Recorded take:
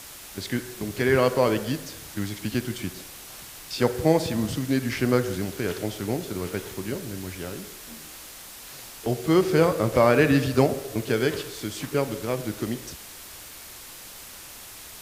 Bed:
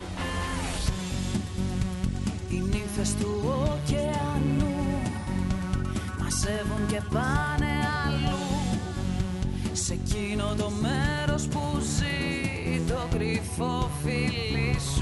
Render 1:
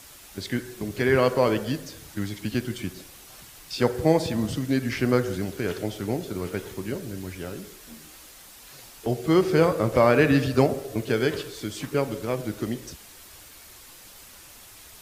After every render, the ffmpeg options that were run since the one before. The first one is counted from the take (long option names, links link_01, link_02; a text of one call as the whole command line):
ffmpeg -i in.wav -af "afftdn=noise_reduction=6:noise_floor=-43" out.wav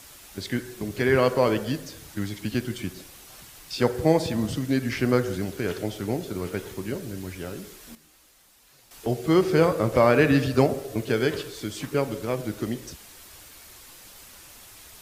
ffmpeg -i in.wav -filter_complex "[0:a]asplit=3[link_01][link_02][link_03];[link_01]atrim=end=7.952[link_04];[link_02]atrim=start=7.948:end=8.912,asetpts=PTS-STARTPTS,volume=-10.5dB[link_05];[link_03]atrim=start=8.908[link_06];[link_04][link_05]acrossfade=duration=0.004:curve1=hsin:curve2=hsin[link_07];[link_07][link_06]acrossfade=duration=0.004:curve1=hsin:curve2=hsin" out.wav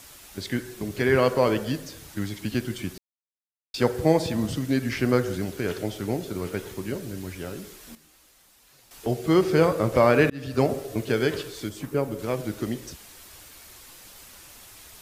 ffmpeg -i in.wav -filter_complex "[0:a]asettb=1/sr,asplit=3[link_01][link_02][link_03];[link_01]atrim=end=11.694[link_04];[link_02]atrim=start=11.69:end=12.19,asetpts=PTS-STARTPTS,afade=type=in:duration=0.004:curve=qsin,afade=type=out:start_time=0.496:duration=0.004:curve=qsin,equalizer=frequency=3800:width_type=o:width=2.8:gain=-8[link_05];[link_03]atrim=start=12.186[link_06];[link_04][link_05]acrossfade=duration=0.004:curve1=hsin:curve2=qsin[link_07];[link_07][link_06]acrossfade=duration=0.004:curve1=qsin:curve2=hsin,asplit=4[link_08][link_09][link_10][link_11];[link_08]atrim=end=2.98,asetpts=PTS-STARTPTS,afade=type=out:start_time=2.976:duration=0.004:curve=hsin[link_12];[link_09]atrim=start=2.98:end=3.74,asetpts=PTS-STARTPTS,volume=0[link_13];[link_10]atrim=start=3.74:end=10.3,asetpts=PTS-STARTPTS,afade=type=in:duration=0.004:curve=hsin,afade=type=out:start_time=6.556:duration=0.004:curve=hsin[link_14];[link_11]atrim=start=10.3,asetpts=PTS-STARTPTS,afade=type=in:duration=0.41[link_15];[link_12][link_13][link_14][link_15]concat=n=4:v=0:a=1" out.wav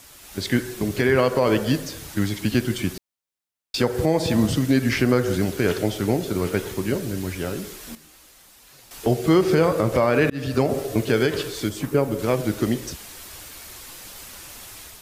ffmpeg -i in.wav -af "alimiter=limit=-15dB:level=0:latency=1:release=156,dynaudnorm=framelen=120:gausssize=5:maxgain=7dB" out.wav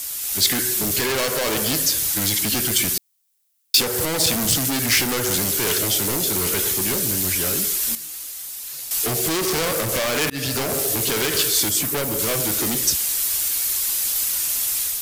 ffmpeg -i in.wav -af "asoftclip=type=hard:threshold=-23.5dB,crystalizer=i=7:c=0" out.wav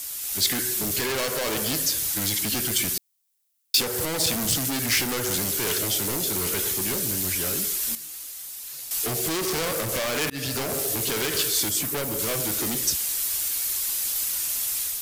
ffmpeg -i in.wav -af "volume=-4.5dB" out.wav